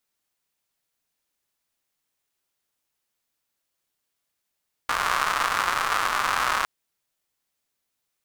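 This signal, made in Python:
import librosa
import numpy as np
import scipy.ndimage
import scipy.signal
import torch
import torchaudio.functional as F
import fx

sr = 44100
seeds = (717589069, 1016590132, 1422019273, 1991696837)

y = fx.rain(sr, seeds[0], length_s=1.76, drops_per_s=230.0, hz=1200.0, bed_db=-19.0)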